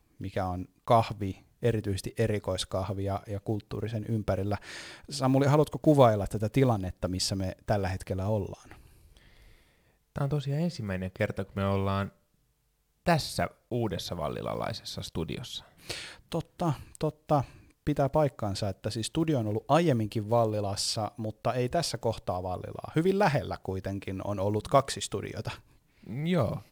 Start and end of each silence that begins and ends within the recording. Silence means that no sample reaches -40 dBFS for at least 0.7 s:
9.17–10.16
12.09–13.06

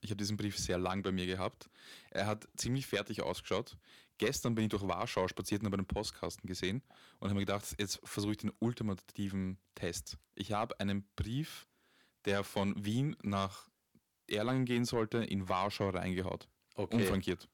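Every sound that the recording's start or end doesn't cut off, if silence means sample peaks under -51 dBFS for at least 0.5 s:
12.25–13.63

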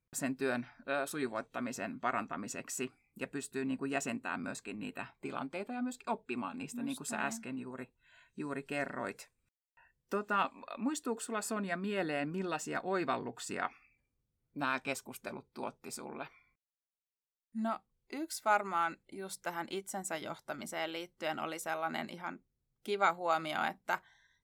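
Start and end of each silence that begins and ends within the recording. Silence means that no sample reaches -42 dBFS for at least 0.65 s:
9.22–10.12
13.67–14.56
16.26–17.55

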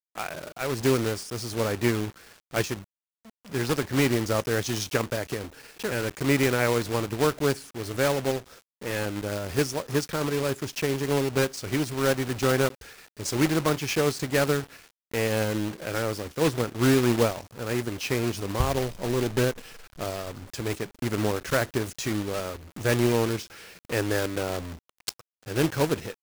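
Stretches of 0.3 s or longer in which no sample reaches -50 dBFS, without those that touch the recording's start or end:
2.84–3.25

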